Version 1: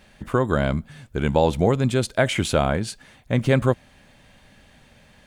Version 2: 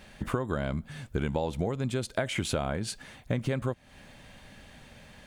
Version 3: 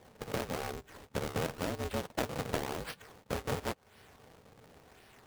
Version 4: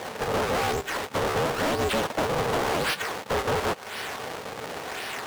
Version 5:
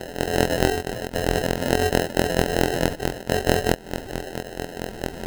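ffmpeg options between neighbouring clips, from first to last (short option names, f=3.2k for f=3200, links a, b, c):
-af "acompressor=threshold=-27dB:ratio=12,volume=1.5dB"
-af "acrusher=samples=30:mix=1:aa=0.000001:lfo=1:lforange=48:lforate=0.94,lowshelf=f=220:t=q:w=3:g=-8,aeval=exprs='val(0)*sgn(sin(2*PI*170*n/s))':c=same,volume=-6dB"
-filter_complex "[0:a]asplit=2[a][b];[b]highpass=f=720:p=1,volume=35dB,asoftclip=type=tanh:threshold=-17.5dB[c];[a][c]amix=inputs=2:normalize=0,lowpass=f=7.6k:p=1,volume=-6dB"
-af "afftfilt=real='hypot(re,im)*cos(PI*b)':imag='0':win_size=2048:overlap=0.75,acrusher=samples=38:mix=1:aa=0.000001,volume=7.5dB"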